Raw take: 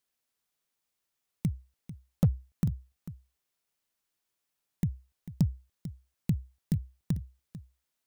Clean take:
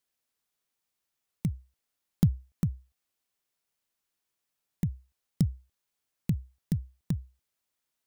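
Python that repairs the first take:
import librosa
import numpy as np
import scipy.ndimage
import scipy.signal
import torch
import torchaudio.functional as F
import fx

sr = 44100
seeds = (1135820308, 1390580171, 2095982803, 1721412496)

y = fx.fix_declip(x, sr, threshold_db=-16.5)
y = fx.fix_echo_inverse(y, sr, delay_ms=445, level_db=-14.5)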